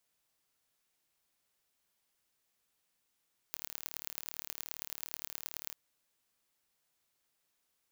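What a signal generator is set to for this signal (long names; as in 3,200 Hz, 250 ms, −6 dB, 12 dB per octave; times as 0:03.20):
impulse train 37.5 per second, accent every 4, −10.5 dBFS 2.20 s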